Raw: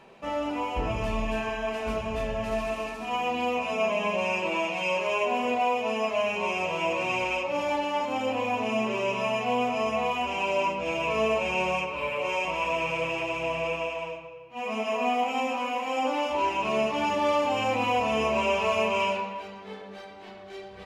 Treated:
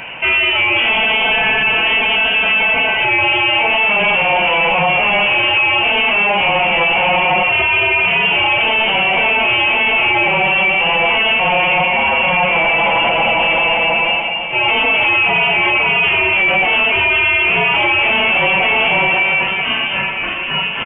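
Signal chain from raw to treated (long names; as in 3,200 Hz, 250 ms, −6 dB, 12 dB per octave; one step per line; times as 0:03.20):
high-pass filter 680 Hz 6 dB per octave
soft clipping −32 dBFS, distortion −9 dB
repeating echo 987 ms, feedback 57%, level −18.5 dB
voice inversion scrambler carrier 3,300 Hz
boost into a limiter +33 dB
level −6 dB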